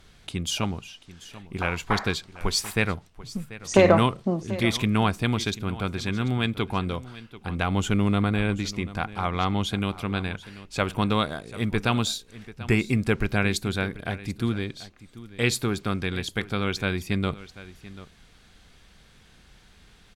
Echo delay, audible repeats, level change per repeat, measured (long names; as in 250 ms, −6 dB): 738 ms, 1, repeats not evenly spaced